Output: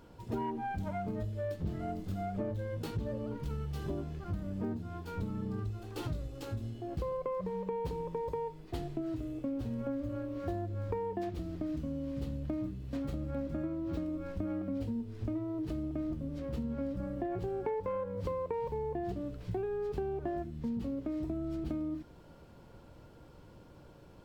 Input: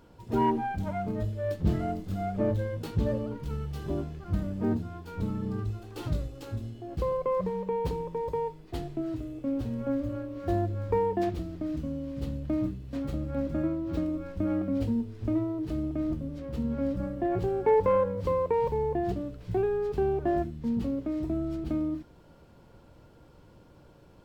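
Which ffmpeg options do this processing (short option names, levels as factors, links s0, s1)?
-af "acompressor=threshold=0.0224:ratio=6"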